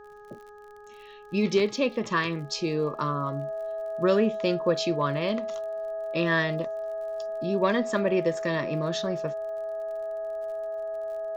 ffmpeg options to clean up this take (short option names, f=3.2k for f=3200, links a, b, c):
-af "adeclick=t=4,bandreject=f=416.4:t=h:w=4,bandreject=f=832.8:t=h:w=4,bandreject=f=1.2492k:t=h:w=4,bandreject=f=1.6656k:t=h:w=4,bandreject=f=650:w=30,agate=range=-21dB:threshold=-39dB"